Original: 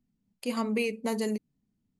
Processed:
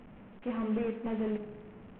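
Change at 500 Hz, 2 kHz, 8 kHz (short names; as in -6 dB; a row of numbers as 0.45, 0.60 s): -3.5 dB, -11.0 dB, under -35 dB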